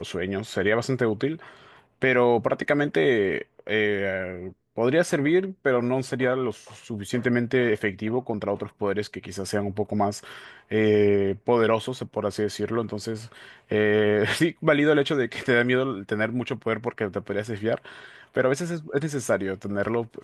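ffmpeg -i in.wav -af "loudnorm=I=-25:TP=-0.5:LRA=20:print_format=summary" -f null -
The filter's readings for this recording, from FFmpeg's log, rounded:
Input Integrated:    -25.1 LUFS
Input True Peak:      -6.0 dBTP
Input LRA:             4.4 LU
Input Threshold:     -35.5 LUFS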